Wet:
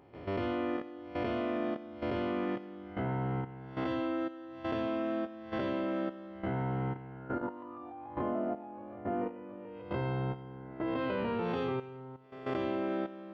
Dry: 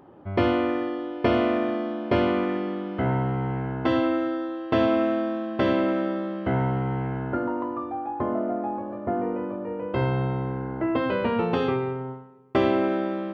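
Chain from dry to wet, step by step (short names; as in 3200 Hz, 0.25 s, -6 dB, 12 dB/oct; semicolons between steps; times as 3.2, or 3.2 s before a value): spectral swells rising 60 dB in 0.64 s; level quantiser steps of 13 dB; 7.5–9.82 bell 2900 Hz +6.5 dB 1 oct; thin delay 88 ms, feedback 61%, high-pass 2400 Hz, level -14.5 dB; gain -7 dB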